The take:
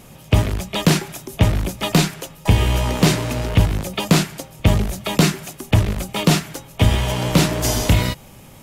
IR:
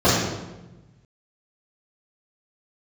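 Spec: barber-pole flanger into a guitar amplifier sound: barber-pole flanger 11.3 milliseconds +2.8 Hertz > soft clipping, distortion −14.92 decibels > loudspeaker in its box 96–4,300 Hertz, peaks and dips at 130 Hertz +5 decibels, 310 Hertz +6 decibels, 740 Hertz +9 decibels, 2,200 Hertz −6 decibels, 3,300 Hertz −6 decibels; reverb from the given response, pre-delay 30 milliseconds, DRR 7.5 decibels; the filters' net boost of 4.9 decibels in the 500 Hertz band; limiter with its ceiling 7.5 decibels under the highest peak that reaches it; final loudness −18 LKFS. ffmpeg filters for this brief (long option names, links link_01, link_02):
-filter_complex "[0:a]equalizer=frequency=500:width_type=o:gain=3,alimiter=limit=-8.5dB:level=0:latency=1,asplit=2[link_01][link_02];[1:a]atrim=start_sample=2205,adelay=30[link_03];[link_02][link_03]afir=irnorm=-1:irlink=0,volume=-31dB[link_04];[link_01][link_04]amix=inputs=2:normalize=0,asplit=2[link_05][link_06];[link_06]adelay=11.3,afreqshift=2.8[link_07];[link_05][link_07]amix=inputs=2:normalize=1,asoftclip=threshold=-13dB,highpass=96,equalizer=frequency=130:width_type=q:width=4:gain=5,equalizer=frequency=310:width_type=q:width=4:gain=6,equalizer=frequency=740:width_type=q:width=4:gain=9,equalizer=frequency=2200:width_type=q:width=4:gain=-6,equalizer=frequency=3300:width_type=q:width=4:gain=-6,lowpass=frequency=4300:width=0.5412,lowpass=frequency=4300:width=1.3066,volume=5dB"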